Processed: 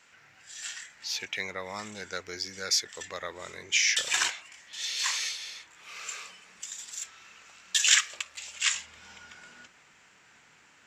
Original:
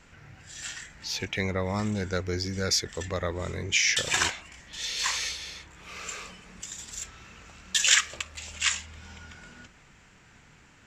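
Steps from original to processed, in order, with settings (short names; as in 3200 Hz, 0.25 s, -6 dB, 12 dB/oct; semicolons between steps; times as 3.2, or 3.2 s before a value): HPF 1300 Hz 6 dB/oct, from 8.75 s 640 Hz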